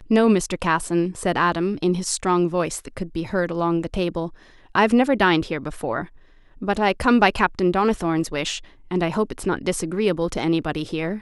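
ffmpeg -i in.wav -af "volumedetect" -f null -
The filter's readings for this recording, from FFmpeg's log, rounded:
mean_volume: -21.8 dB
max_volume: -3.1 dB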